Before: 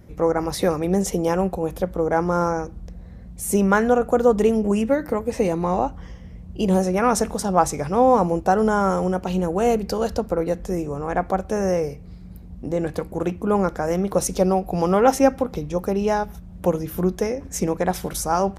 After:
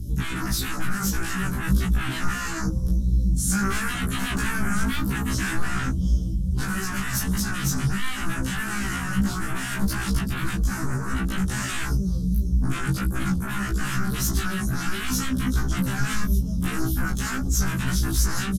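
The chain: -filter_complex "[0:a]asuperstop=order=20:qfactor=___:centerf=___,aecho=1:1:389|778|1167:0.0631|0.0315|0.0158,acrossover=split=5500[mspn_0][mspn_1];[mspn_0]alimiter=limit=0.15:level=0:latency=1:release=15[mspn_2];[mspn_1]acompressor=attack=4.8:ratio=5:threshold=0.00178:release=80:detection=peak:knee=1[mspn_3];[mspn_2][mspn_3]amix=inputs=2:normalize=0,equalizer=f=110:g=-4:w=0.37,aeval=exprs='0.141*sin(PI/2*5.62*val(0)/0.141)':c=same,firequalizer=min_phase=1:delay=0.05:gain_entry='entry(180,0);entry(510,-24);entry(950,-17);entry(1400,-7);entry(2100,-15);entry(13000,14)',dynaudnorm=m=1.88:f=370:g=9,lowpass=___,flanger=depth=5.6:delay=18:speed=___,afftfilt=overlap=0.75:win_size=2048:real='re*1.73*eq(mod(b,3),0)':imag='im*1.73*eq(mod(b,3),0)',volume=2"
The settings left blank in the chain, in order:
0.57, 1400, 7.7k, 1.6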